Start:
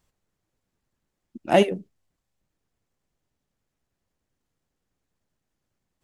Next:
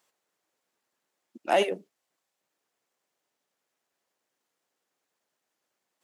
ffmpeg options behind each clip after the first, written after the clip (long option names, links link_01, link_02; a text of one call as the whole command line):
ffmpeg -i in.wav -af "highpass=470,alimiter=limit=-15.5dB:level=0:latency=1:release=136,volume=3.5dB" out.wav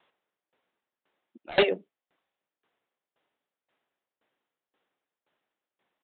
ffmpeg -i in.wav -af "aresample=8000,aeval=exprs='0.0944*(abs(mod(val(0)/0.0944+3,4)-2)-1)':channel_layout=same,aresample=44100,aeval=exprs='val(0)*pow(10,-22*if(lt(mod(1.9*n/s,1),2*abs(1.9)/1000),1-mod(1.9*n/s,1)/(2*abs(1.9)/1000),(mod(1.9*n/s,1)-2*abs(1.9)/1000)/(1-2*abs(1.9)/1000))/20)':channel_layout=same,volume=8.5dB" out.wav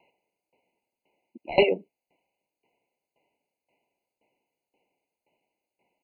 ffmpeg -i in.wav -filter_complex "[0:a]asplit=2[link_01][link_02];[link_02]acompressor=threshold=-27dB:ratio=8,volume=0dB[link_03];[link_01][link_03]amix=inputs=2:normalize=0,afftfilt=real='re*eq(mod(floor(b*sr/1024/1000),2),0)':imag='im*eq(mod(floor(b*sr/1024/1000),2),0)':win_size=1024:overlap=0.75" out.wav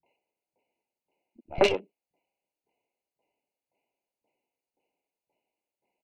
ffmpeg -i in.wav -filter_complex "[0:a]aeval=exprs='0.501*(cos(1*acos(clip(val(0)/0.501,-1,1)))-cos(1*PI/2))+0.112*(cos(3*acos(clip(val(0)/0.501,-1,1)))-cos(3*PI/2))+0.0141*(cos(8*acos(clip(val(0)/0.501,-1,1)))-cos(8*PI/2))':channel_layout=same,acrossover=split=170|1800[link_01][link_02][link_03];[link_02]adelay=30[link_04];[link_03]adelay=60[link_05];[link_01][link_04][link_05]amix=inputs=3:normalize=0,volume=4dB" out.wav